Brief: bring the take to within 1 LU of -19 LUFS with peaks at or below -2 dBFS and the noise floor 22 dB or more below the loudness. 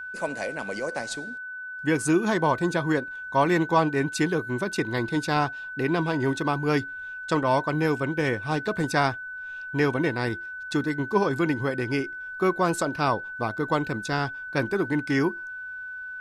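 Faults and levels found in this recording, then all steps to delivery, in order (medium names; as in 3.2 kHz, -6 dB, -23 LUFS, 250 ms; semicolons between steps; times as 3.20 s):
steady tone 1.5 kHz; tone level -34 dBFS; loudness -26.5 LUFS; peak level -8.5 dBFS; loudness target -19.0 LUFS
-> band-stop 1.5 kHz, Q 30; trim +7.5 dB; peak limiter -2 dBFS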